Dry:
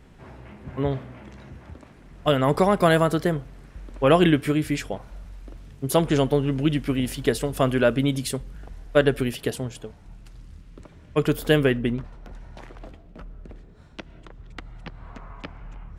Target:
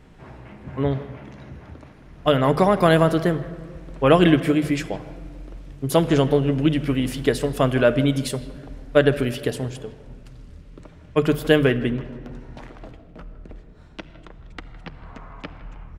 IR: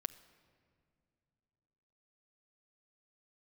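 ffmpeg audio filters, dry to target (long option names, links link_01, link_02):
-filter_complex "[0:a]asettb=1/sr,asplit=3[link_01][link_02][link_03];[link_01]atrim=end=0.844[link_04];[link_02]atrim=start=0.84:end=3.27,asetpts=PTS-STARTPTS,afade=type=in:duration=0.004:curve=qsin,afade=type=out:start_time=2.426:duration=0.004:curve=qsin,bandreject=frequency=7800:width=7.8[link_05];[link_03]atrim=start=3.266[link_06];[link_04][link_05]acrossfade=duration=0.004:curve1=hsin:curve2=qsin[link_07];[link_07][link_06]acrossfade=duration=0.004:curve1=qsin:curve2=hsin,highshelf=frequency=7400:gain=-5.5,bandreject=frequency=50:width_type=h:width=6,bandreject=frequency=100:width_type=h:width=6,bandreject=frequency=150:width_type=h:width=6,asplit=2[link_08][link_09];[link_09]adelay=160,highpass=300,lowpass=3400,asoftclip=type=hard:threshold=-13.5dB,volume=-17dB[link_10];[link_08][link_10]amix=inputs=2:normalize=0[link_11];[1:a]atrim=start_sample=2205[link_12];[link_11][link_12]afir=irnorm=-1:irlink=0,volume=4dB"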